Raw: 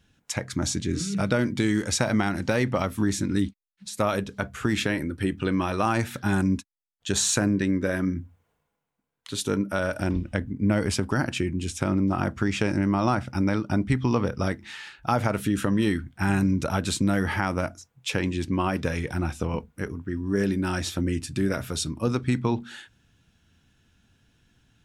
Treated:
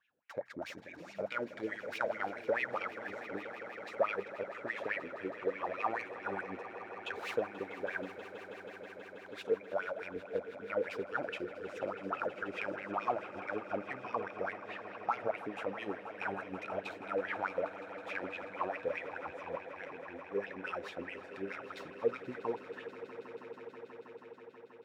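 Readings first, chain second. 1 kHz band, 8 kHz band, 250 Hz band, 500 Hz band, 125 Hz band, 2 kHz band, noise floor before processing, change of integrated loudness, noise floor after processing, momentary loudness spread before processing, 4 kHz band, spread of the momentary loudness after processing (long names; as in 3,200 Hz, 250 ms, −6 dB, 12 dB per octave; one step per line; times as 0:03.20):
−8.0 dB, below −30 dB, −21.5 dB, −7.0 dB, −29.5 dB, −8.0 dB, −76 dBFS, −13.0 dB, −53 dBFS, 7 LU, −18.5 dB, 11 LU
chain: stylus tracing distortion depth 0.19 ms
LFO wah 4.7 Hz 450–2,600 Hz, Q 8
echo that builds up and dies away 161 ms, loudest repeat 5, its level −16 dB
level +2 dB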